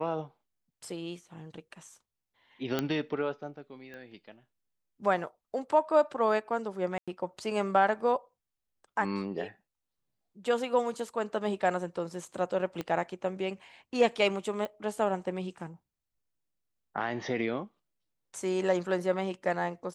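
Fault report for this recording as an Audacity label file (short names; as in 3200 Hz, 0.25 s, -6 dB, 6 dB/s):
2.790000	2.790000	pop -14 dBFS
3.940000	3.940000	pop -32 dBFS
6.980000	7.080000	gap 96 ms
12.810000	12.810000	pop -21 dBFS
14.650000	14.650000	pop -23 dBFS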